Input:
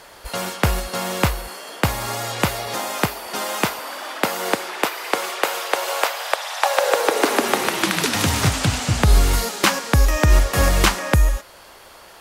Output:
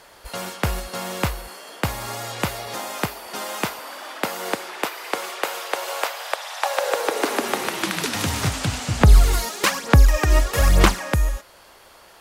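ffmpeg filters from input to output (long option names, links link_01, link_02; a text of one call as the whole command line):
ffmpeg -i in.wav -filter_complex "[0:a]asettb=1/sr,asplit=3[link_01][link_02][link_03];[link_01]atrim=end=9.014[link_04];[link_02]atrim=start=9.01:end=11.04,asetpts=PTS-STARTPTS,afade=type=in:duration=0.004:curve=qsin,afade=type=out:start_time=2.026:duration=0.004:curve=qsin,aphaser=in_gain=1:out_gain=1:delay=3.2:decay=0.6:speed=1.1:type=sinusoidal[link_05];[link_03]atrim=start=11.036[link_06];[link_04][link_05]acrossfade=duration=0.004:curve1=hsin:curve2=qsin[link_07];[link_07][link_06]acrossfade=duration=0.004:curve1=qsin:curve2=hsin,volume=-4.5dB" out.wav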